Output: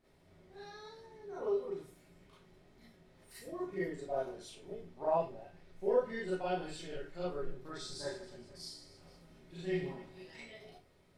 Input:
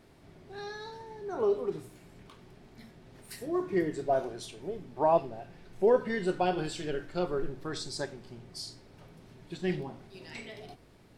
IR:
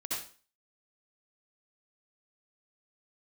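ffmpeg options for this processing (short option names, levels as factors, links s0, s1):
-filter_complex "[0:a]asettb=1/sr,asplit=3[s0][s1][s2];[s0]atrim=end=7.764[s3];[s1]atrim=start=7.76:end=10.23,asetpts=PTS-STARTPTS,afade=t=in:d=0.004:c=qsin,afade=t=out:st=2.466:d=0.004:c=qsin,aecho=1:1:30|78|154.8|277.7|474.3:0.631|0.398|0.251|0.158|0.1,atrim=end_sample=108927[s4];[s2]atrim=start=10.226[s5];[s3][s4]acrossfade=d=0.004:c1=hsin:c2=qsin[s6];[s6][s5]acrossfade=d=0.004:c1=qsin:c2=hsin[s7];[1:a]atrim=start_sample=2205,asetrate=83790,aresample=44100[s8];[s7][s8]afir=irnorm=-1:irlink=0,volume=0.562"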